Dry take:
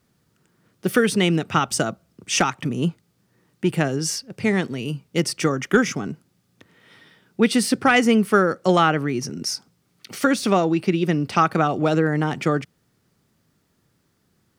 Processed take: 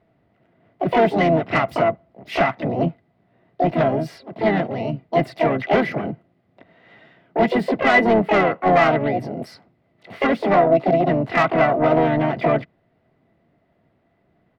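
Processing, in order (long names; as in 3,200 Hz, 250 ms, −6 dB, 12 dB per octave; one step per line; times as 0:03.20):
pitch-shifted copies added −3 semitones −7 dB, +7 semitones −5 dB, +12 semitones −4 dB
high-frequency loss of the air 430 metres
soft clipping −13 dBFS, distortion −13 dB
hollow resonant body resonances 670/2,000 Hz, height 14 dB, ringing for 40 ms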